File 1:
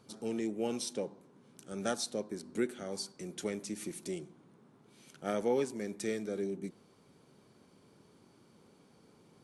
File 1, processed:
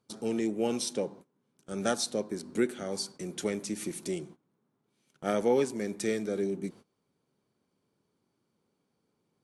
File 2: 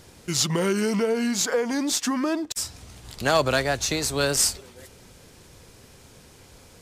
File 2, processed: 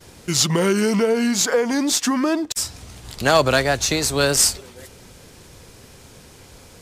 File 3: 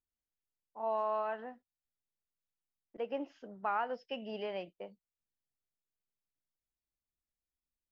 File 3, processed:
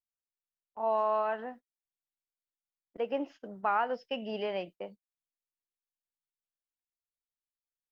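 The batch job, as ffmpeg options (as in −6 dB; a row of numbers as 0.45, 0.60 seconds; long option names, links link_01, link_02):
-af "agate=range=-20dB:threshold=-53dB:ratio=16:detection=peak,volume=5dB"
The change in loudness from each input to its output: +5.0, +5.0, +5.0 LU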